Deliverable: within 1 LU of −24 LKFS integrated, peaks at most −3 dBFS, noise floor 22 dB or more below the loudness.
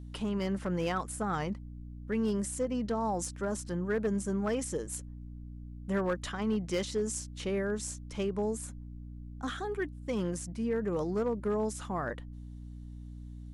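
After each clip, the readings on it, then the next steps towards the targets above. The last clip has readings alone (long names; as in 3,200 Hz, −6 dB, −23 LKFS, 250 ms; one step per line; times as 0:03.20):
share of clipped samples 0.4%; peaks flattened at −24.0 dBFS; mains hum 60 Hz; hum harmonics up to 300 Hz; level of the hum −42 dBFS; integrated loudness −34.0 LKFS; sample peak −24.0 dBFS; target loudness −24.0 LKFS
→ clipped peaks rebuilt −24 dBFS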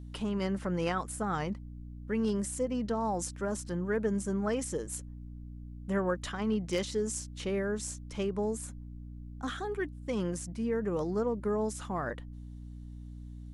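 share of clipped samples 0.0%; mains hum 60 Hz; hum harmonics up to 300 Hz; level of the hum −42 dBFS
→ mains-hum notches 60/120/180/240/300 Hz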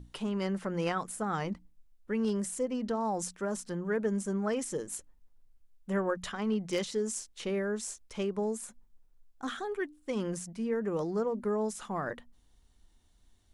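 mains hum none found; integrated loudness −34.0 LKFS; sample peak −18.0 dBFS; target loudness −24.0 LKFS
→ level +10 dB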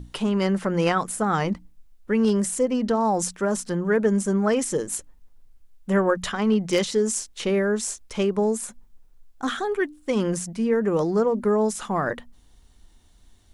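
integrated loudness −24.0 LKFS; sample peak −8.0 dBFS; background noise floor −54 dBFS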